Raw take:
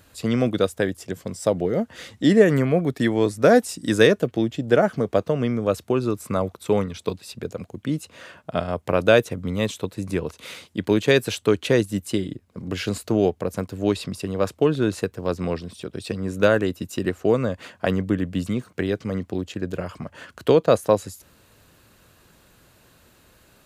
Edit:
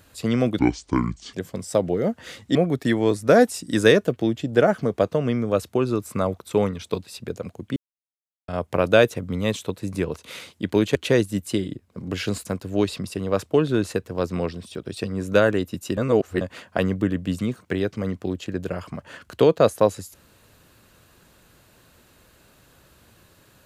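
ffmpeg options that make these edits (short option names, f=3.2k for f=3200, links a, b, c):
-filter_complex "[0:a]asplit=10[a][b][c][d][e][f][g][h][i][j];[a]atrim=end=0.594[k];[b]atrim=start=0.59:end=1.05,asetpts=PTS-STARTPTS,asetrate=27342,aresample=44100,atrim=end_sample=32719,asetpts=PTS-STARTPTS[l];[c]atrim=start=1.046:end=2.272[m];[d]atrim=start=2.698:end=7.91,asetpts=PTS-STARTPTS,afade=t=out:st=5.208:d=0.004:c=hsin[n];[e]atrim=start=7.91:end=8.63,asetpts=PTS-STARTPTS,volume=0[o];[f]atrim=start=8.63:end=11.102,asetpts=PTS-STARTPTS,afade=t=in:d=0.004:c=hsin[p];[g]atrim=start=11.548:end=13.052[q];[h]atrim=start=13.528:end=17.052[r];[i]atrim=start=17.048:end=17.492,asetpts=PTS-STARTPTS,areverse[s];[j]atrim=start=17.488[t];[k][l]acrossfade=d=0.004:c1=hsin:c2=hsin[u];[u][m]acrossfade=d=0.004:c1=hsin:c2=hsin[v];[n][o][p]concat=n=3:v=0:a=1[w];[v][w]acrossfade=d=0.004:c1=hsin:c2=hsin[x];[x][q]acrossfade=d=0.004:c1=hsin:c2=hsin[y];[y][r]acrossfade=d=0.004:c1=hsin:c2=hsin[z];[z][s]acrossfade=d=0.004:c1=hsin:c2=hsin[aa];[aa][t]acrossfade=d=0.004:c1=hsin:c2=hsin"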